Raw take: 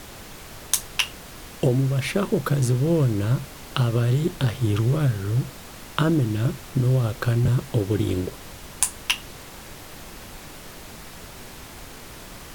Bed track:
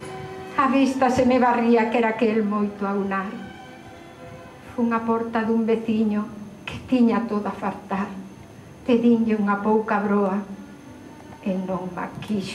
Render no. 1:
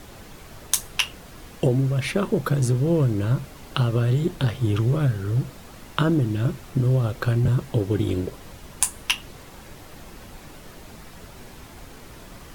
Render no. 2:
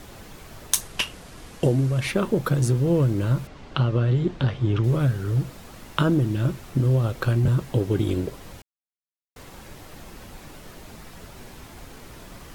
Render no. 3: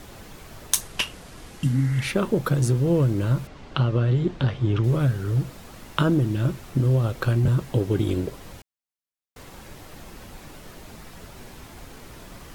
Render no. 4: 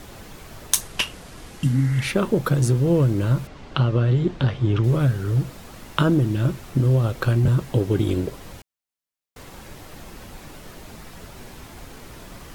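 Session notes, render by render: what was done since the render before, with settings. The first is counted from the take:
broadband denoise 6 dB, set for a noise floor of −42 dBFS
0:00.81–0:02.09: variable-slope delta modulation 64 kbit/s; 0:03.47–0:04.84: high-frequency loss of the air 130 metres; 0:08.62–0:09.36: silence
0:01.55–0:02.07: healed spectral selection 310–2,200 Hz both
level +2 dB

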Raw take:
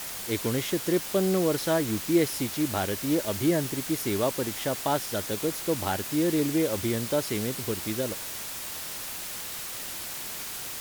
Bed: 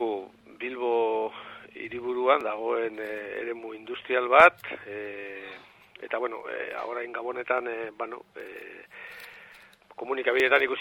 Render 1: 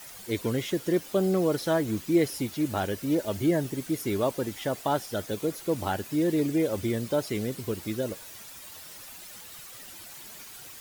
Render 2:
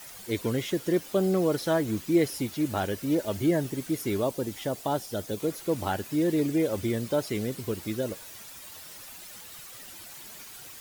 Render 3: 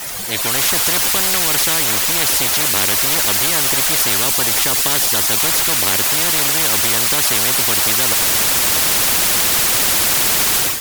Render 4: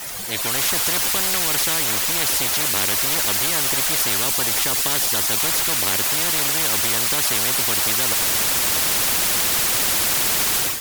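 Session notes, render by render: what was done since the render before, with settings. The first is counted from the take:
broadband denoise 11 dB, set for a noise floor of −37 dBFS
0:04.20–0:05.40: dynamic equaliser 1,700 Hz, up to −6 dB, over −43 dBFS, Q 0.77
automatic gain control gain up to 15.5 dB; every bin compressed towards the loudest bin 10 to 1
level −4.5 dB

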